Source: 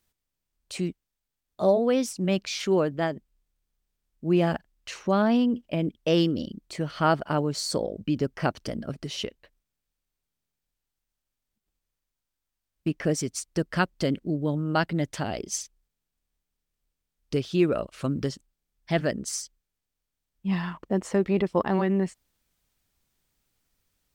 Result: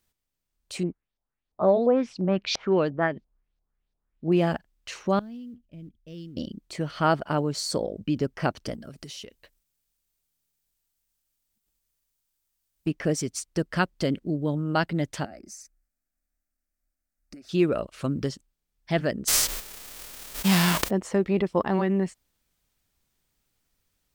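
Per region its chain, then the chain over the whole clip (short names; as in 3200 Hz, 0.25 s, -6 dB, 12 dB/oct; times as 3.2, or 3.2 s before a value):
0.83–4.32 LFO low-pass saw up 2.9 Hz 660–5500 Hz + mismatched tape noise reduction decoder only
5.19–6.37 G.711 law mismatch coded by mu + passive tone stack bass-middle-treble 10-0-1 + mismatched tape noise reduction decoder only
8.74–12.87 high shelf 4800 Hz +12 dB + compressor 8:1, threshold -37 dBFS
15.25–17.49 compressor, threshold -37 dBFS + fixed phaser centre 650 Hz, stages 8
19.27–20.89 spectral whitening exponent 0.3 + fast leveller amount 70%
whole clip: dry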